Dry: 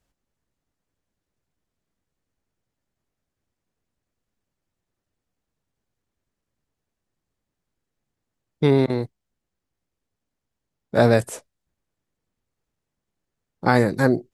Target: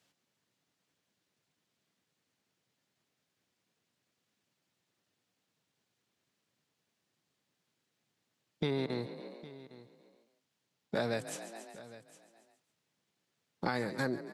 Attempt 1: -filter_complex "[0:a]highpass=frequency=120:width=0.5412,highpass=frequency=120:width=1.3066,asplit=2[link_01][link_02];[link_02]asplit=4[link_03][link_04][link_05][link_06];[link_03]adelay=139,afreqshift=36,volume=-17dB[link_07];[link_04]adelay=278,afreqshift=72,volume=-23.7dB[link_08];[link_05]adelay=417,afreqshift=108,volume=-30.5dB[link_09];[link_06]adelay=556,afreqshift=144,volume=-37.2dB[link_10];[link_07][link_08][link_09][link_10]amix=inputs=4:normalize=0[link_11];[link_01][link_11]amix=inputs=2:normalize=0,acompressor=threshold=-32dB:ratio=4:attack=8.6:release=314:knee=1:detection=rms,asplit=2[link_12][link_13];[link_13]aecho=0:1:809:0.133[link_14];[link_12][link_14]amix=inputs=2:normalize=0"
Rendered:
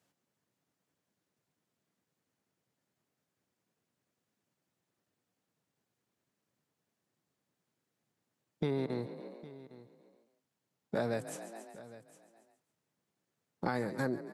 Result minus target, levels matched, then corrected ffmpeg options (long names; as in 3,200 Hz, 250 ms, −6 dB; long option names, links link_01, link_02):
4,000 Hz band −7.5 dB
-filter_complex "[0:a]highpass=frequency=120:width=0.5412,highpass=frequency=120:width=1.3066,equalizer=frequency=3600:width_type=o:width=2:gain=8.5,asplit=2[link_01][link_02];[link_02]asplit=4[link_03][link_04][link_05][link_06];[link_03]adelay=139,afreqshift=36,volume=-17dB[link_07];[link_04]adelay=278,afreqshift=72,volume=-23.7dB[link_08];[link_05]adelay=417,afreqshift=108,volume=-30.5dB[link_09];[link_06]adelay=556,afreqshift=144,volume=-37.2dB[link_10];[link_07][link_08][link_09][link_10]amix=inputs=4:normalize=0[link_11];[link_01][link_11]amix=inputs=2:normalize=0,acompressor=threshold=-32dB:ratio=4:attack=8.6:release=314:knee=1:detection=rms,asplit=2[link_12][link_13];[link_13]aecho=0:1:809:0.133[link_14];[link_12][link_14]amix=inputs=2:normalize=0"